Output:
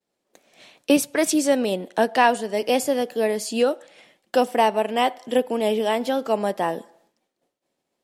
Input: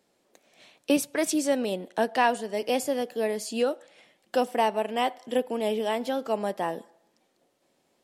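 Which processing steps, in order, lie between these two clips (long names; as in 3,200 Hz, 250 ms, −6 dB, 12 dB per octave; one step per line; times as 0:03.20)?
downward expander −60 dBFS
level +5.5 dB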